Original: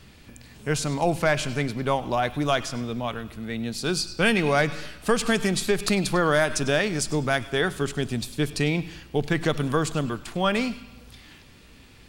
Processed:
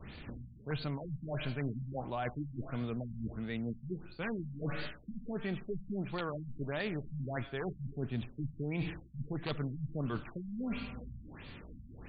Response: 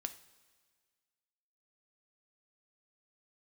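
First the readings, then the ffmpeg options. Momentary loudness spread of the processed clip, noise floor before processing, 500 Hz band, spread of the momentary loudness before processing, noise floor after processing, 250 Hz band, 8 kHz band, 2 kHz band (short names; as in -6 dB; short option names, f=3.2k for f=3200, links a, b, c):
10 LU, -50 dBFS, -16.5 dB, 9 LU, -53 dBFS, -11.5 dB, under -40 dB, -18.0 dB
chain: -af "aeval=exprs='(mod(3.98*val(0)+1,2)-1)/3.98':c=same,areverse,acompressor=threshold=-36dB:ratio=8,areverse,adynamicequalizer=threshold=0.00112:dfrequency=130:dqfactor=5.9:tfrequency=130:tqfactor=5.9:attack=5:release=100:ratio=0.375:range=2.5:mode=boostabove:tftype=bell,afftfilt=real='re*lt(b*sr/1024,230*pow(4800/230,0.5+0.5*sin(2*PI*1.5*pts/sr)))':imag='im*lt(b*sr/1024,230*pow(4800/230,0.5+0.5*sin(2*PI*1.5*pts/sr)))':win_size=1024:overlap=0.75,volume=2dB"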